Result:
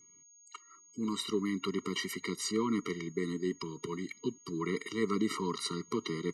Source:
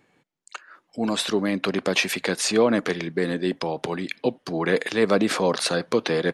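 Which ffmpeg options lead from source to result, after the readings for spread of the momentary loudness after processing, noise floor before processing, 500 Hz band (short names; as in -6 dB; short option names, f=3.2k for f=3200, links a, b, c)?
8 LU, -69 dBFS, -13.5 dB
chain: -af "aeval=exprs='val(0)+0.00355*sin(2*PI*6600*n/s)':c=same,afftfilt=real='re*eq(mod(floor(b*sr/1024/460),2),0)':imag='im*eq(mod(floor(b*sr/1024/460),2),0)':win_size=1024:overlap=0.75,volume=-8.5dB"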